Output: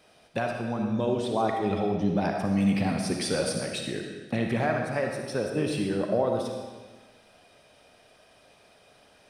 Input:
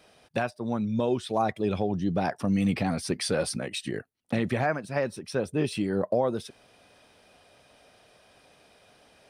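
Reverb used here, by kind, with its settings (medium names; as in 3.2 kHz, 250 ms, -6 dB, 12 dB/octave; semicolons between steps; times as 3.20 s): algorithmic reverb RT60 1.4 s, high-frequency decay 0.95×, pre-delay 15 ms, DRR 2 dB; trim -1.5 dB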